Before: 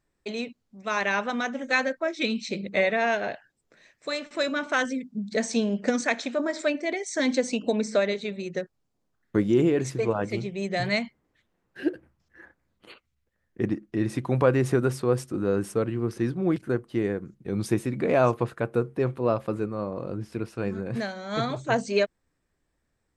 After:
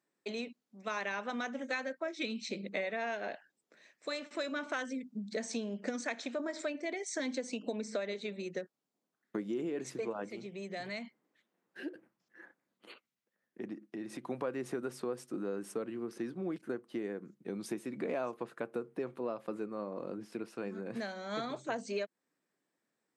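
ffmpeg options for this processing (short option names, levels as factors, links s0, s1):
-filter_complex "[0:a]asplit=3[s0][s1][s2];[s0]afade=t=out:st=10.28:d=0.02[s3];[s1]acompressor=threshold=0.0141:ratio=2:attack=3.2:release=140:knee=1:detection=peak,afade=t=in:st=10.28:d=0.02,afade=t=out:st=14.29:d=0.02[s4];[s2]afade=t=in:st=14.29:d=0.02[s5];[s3][s4][s5]amix=inputs=3:normalize=0,acompressor=threshold=0.0355:ratio=4,highpass=f=190:w=0.5412,highpass=f=190:w=1.3066,volume=0.562"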